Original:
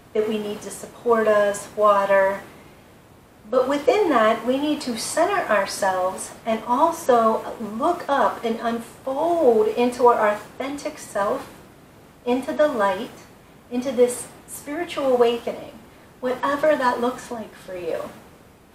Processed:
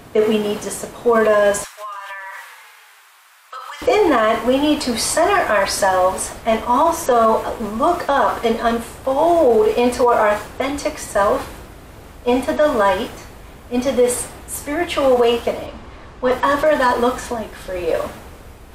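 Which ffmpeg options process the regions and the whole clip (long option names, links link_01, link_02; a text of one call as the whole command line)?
ffmpeg -i in.wav -filter_complex "[0:a]asettb=1/sr,asplit=3[link_01][link_02][link_03];[link_01]atrim=end=1.644[link_04];[link_02]atrim=start=1.64:end=3.82,asetpts=PTS-STARTPTS,afade=type=in:duration=0.004:curve=qsin,afade=type=out:start_time=2.176:duration=0.004:curve=qsin,highpass=frequency=1100:width=0.5412,highpass=frequency=1100:width=1.3066,acompressor=threshold=-36dB:ratio=8:attack=3.2:release=140:knee=1:detection=peak,asplit=9[link_05][link_06][link_07][link_08][link_09][link_10][link_11][link_12][link_13];[link_06]adelay=140,afreqshift=-30,volume=-13.5dB[link_14];[link_07]adelay=280,afreqshift=-60,volume=-17.2dB[link_15];[link_08]adelay=420,afreqshift=-90,volume=-21dB[link_16];[link_09]adelay=560,afreqshift=-120,volume=-24.7dB[link_17];[link_10]adelay=700,afreqshift=-150,volume=-28.5dB[link_18];[link_11]adelay=840,afreqshift=-180,volume=-32.2dB[link_19];[link_12]adelay=980,afreqshift=-210,volume=-36dB[link_20];[link_13]adelay=1120,afreqshift=-240,volume=-39.7dB[link_21];[link_05][link_14][link_15][link_16][link_17][link_18][link_19][link_20][link_21]amix=inputs=9:normalize=0,atrim=end_sample=96138[link_22];[link_03]atrim=start=3.816[link_23];[link_04][link_22]acrossfade=duration=0.004:curve1=hsin:curve2=qsin[link_24];[link_24][link_23]acrossfade=duration=0.004:curve1=qsin:curve2=hsin,asettb=1/sr,asplit=3[link_25][link_26][link_27];[link_25]atrim=end=15.664[link_28];[link_26]atrim=start=15.66:end=16.32,asetpts=PTS-STARTPTS,afade=type=in:duration=0.004:curve=qsin,afade=type=out:start_time=0.656:duration=0.004:curve=qsin,lowpass=5700,equalizer=frequency=1100:width_type=o:width=0.22:gain=5.5,asoftclip=type=hard:threshold=-14dB[link_29];[link_27]atrim=start=16.316[link_30];[link_28][link_29]acrossfade=duration=0.004:curve1=hsin:curve2=qsin[link_31];[link_31][link_30]acrossfade=duration=0.004:curve1=qsin:curve2=hsin,asubboost=boost=6.5:cutoff=62,alimiter=limit=-14.5dB:level=0:latency=1:release=27,volume=8dB" out.wav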